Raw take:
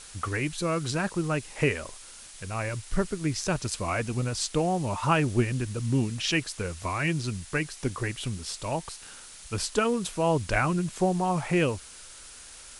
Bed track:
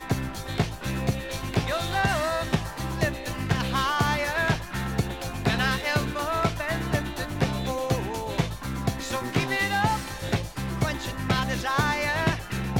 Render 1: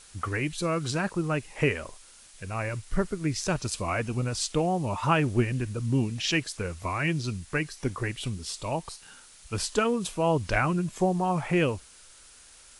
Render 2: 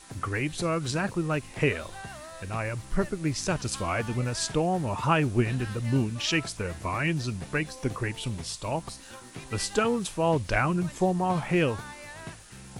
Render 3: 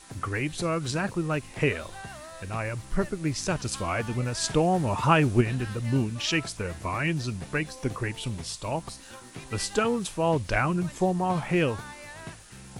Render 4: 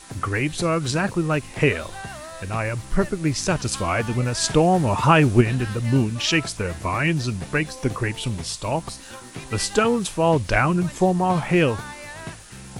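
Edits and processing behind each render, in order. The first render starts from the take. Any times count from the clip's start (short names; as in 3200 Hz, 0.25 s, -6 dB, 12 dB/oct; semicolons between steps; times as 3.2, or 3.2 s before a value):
noise print and reduce 6 dB
add bed track -17.5 dB
4.44–5.41 gain +3 dB
gain +6 dB; limiter -3 dBFS, peak gain reduction 2 dB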